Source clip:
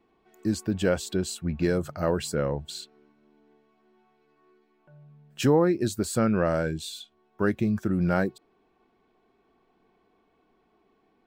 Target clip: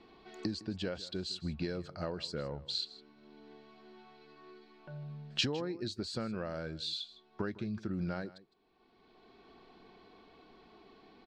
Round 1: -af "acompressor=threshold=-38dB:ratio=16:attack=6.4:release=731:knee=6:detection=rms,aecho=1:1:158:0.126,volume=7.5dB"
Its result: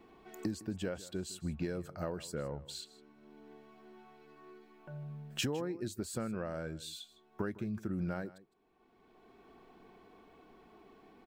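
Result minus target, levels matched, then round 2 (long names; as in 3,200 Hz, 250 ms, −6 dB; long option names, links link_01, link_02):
4,000 Hz band −6.5 dB
-af "acompressor=threshold=-38dB:ratio=16:attack=6.4:release=731:knee=6:detection=rms,lowpass=frequency=4400:width_type=q:width=3.6,aecho=1:1:158:0.126,volume=7.5dB"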